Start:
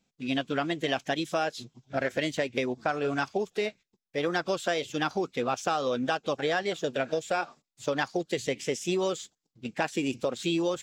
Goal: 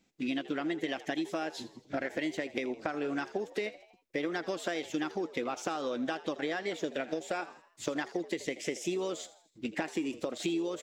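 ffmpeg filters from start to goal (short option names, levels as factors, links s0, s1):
-filter_complex "[0:a]equalizer=f=125:t=o:w=0.33:g=-11,equalizer=f=315:t=o:w=0.33:g=10,equalizer=f=2000:t=o:w=0.33:g=6,acompressor=threshold=0.0224:ratio=6,asplit=2[s0][s1];[s1]asplit=4[s2][s3][s4][s5];[s2]adelay=81,afreqshift=78,volume=0.141[s6];[s3]adelay=162,afreqshift=156,volume=0.0708[s7];[s4]adelay=243,afreqshift=234,volume=0.0355[s8];[s5]adelay=324,afreqshift=312,volume=0.0176[s9];[s6][s7][s8][s9]amix=inputs=4:normalize=0[s10];[s0][s10]amix=inputs=2:normalize=0,volume=1.26"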